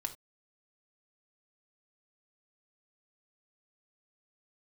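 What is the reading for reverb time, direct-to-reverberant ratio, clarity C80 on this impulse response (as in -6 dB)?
no single decay rate, 4.5 dB, 22.0 dB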